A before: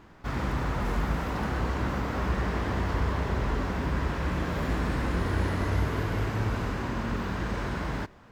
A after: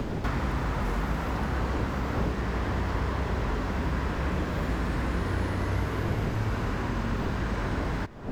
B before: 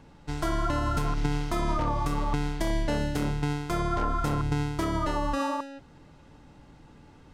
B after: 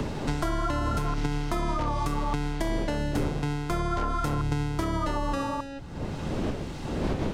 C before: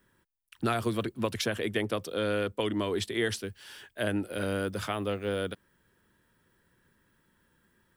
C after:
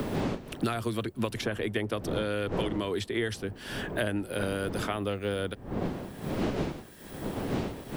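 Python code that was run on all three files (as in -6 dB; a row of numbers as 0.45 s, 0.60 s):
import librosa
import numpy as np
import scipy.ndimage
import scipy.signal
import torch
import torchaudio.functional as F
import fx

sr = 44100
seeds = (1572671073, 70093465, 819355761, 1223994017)

y = fx.dmg_wind(x, sr, seeds[0], corner_hz=360.0, level_db=-38.0)
y = fx.band_squash(y, sr, depth_pct=100)
y = y * librosa.db_to_amplitude(-1.0)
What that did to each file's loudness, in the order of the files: 0.0 LU, -0.5 LU, -0.5 LU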